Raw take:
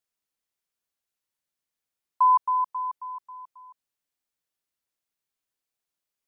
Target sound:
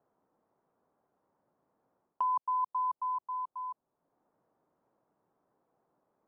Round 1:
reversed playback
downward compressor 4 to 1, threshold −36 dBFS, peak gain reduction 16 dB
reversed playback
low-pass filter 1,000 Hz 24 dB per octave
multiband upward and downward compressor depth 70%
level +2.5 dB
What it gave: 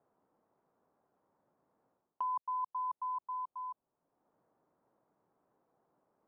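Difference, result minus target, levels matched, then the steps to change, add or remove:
downward compressor: peak gain reduction +5.5 dB
change: downward compressor 4 to 1, threshold −29 dBFS, peak gain reduction 10.5 dB

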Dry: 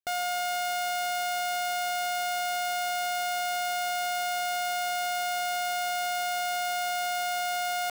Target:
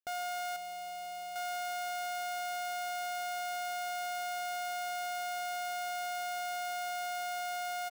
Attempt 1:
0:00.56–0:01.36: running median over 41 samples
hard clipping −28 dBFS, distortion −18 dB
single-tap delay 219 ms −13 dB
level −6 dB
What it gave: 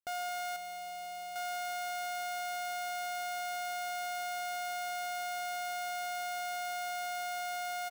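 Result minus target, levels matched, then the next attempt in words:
echo-to-direct +9 dB
0:00.56–0:01.36: running median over 41 samples
hard clipping −28 dBFS, distortion −18 dB
single-tap delay 219 ms −22 dB
level −6 dB

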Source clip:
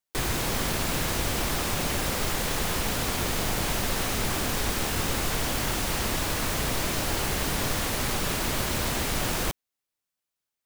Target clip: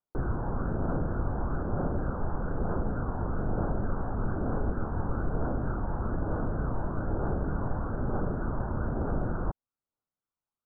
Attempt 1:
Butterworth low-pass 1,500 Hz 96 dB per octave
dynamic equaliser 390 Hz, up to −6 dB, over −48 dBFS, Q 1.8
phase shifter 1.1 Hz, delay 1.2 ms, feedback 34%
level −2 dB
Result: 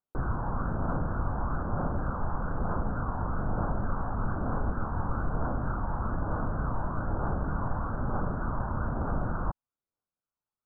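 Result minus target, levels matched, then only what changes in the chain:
1,000 Hz band +3.5 dB
change: dynamic equaliser 1,100 Hz, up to −6 dB, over −48 dBFS, Q 1.8

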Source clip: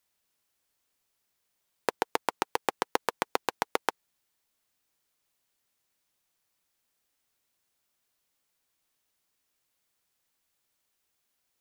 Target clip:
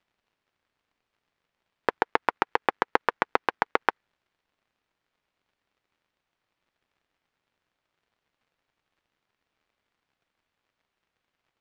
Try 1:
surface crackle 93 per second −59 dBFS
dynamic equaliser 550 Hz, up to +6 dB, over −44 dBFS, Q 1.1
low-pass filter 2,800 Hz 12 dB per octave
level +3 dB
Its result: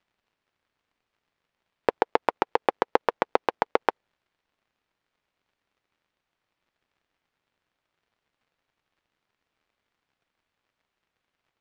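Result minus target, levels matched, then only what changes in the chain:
2,000 Hz band −5.0 dB
change: dynamic equaliser 1,600 Hz, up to +6 dB, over −44 dBFS, Q 1.1

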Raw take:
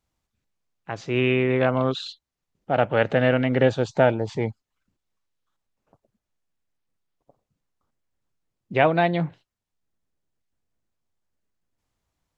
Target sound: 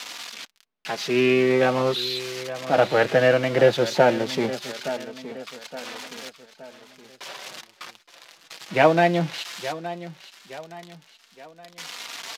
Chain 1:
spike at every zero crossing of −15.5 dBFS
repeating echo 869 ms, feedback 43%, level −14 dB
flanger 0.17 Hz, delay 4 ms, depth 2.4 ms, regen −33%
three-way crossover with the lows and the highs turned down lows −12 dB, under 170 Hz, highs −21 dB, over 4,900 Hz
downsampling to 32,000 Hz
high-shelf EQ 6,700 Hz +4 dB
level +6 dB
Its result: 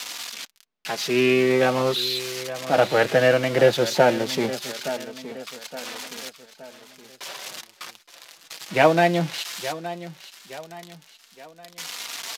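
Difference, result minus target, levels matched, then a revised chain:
8,000 Hz band +5.5 dB
spike at every zero crossing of −15.5 dBFS
repeating echo 869 ms, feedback 43%, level −14 dB
flanger 0.17 Hz, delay 4 ms, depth 2.4 ms, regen −33%
three-way crossover with the lows and the highs turned down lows −12 dB, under 170 Hz, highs −21 dB, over 4,900 Hz
downsampling to 32,000 Hz
high-shelf EQ 6,700 Hz −6 dB
level +6 dB

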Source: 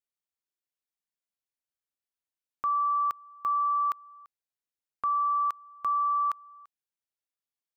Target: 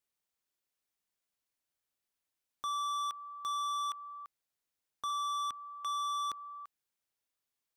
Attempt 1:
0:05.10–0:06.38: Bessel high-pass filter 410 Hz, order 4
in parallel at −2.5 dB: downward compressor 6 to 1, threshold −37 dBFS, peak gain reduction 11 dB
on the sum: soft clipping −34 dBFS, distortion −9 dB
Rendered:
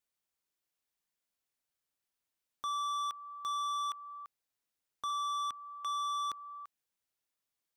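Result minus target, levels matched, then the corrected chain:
downward compressor: peak gain reduction +6 dB
0:05.10–0:06.38: Bessel high-pass filter 410 Hz, order 4
in parallel at −2.5 dB: downward compressor 6 to 1, threshold −30 dBFS, peak gain reduction 5 dB
on the sum: soft clipping −34 dBFS, distortion −9 dB

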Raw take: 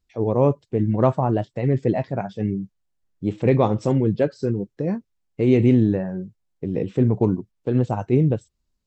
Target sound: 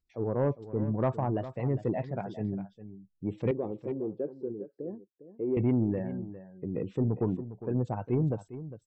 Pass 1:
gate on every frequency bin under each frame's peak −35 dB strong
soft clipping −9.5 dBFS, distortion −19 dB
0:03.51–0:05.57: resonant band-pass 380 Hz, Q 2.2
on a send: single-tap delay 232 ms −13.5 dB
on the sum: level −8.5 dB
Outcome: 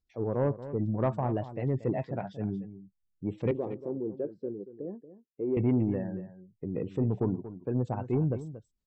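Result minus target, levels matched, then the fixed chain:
echo 173 ms early
gate on every frequency bin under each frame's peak −35 dB strong
soft clipping −9.5 dBFS, distortion −19 dB
0:03.51–0:05.57: resonant band-pass 380 Hz, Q 2.2
on a send: single-tap delay 405 ms −13.5 dB
on the sum: level −8.5 dB

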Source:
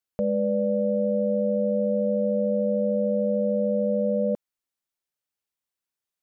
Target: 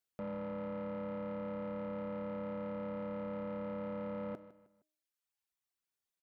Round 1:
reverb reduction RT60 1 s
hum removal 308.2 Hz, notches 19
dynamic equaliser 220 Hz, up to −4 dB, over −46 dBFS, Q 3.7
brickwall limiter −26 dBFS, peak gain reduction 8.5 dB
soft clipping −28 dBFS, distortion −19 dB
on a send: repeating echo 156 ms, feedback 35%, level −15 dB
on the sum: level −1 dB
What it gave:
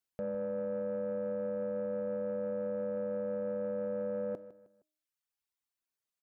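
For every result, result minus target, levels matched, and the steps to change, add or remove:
soft clipping: distortion −9 dB; 250 Hz band −5.0 dB
change: soft clipping −36.5 dBFS, distortion −10 dB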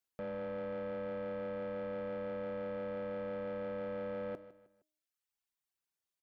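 250 Hz band −5.0 dB
change: dynamic equaliser 500 Hz, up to −4 dB, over −46 dBFS, Q 3.7

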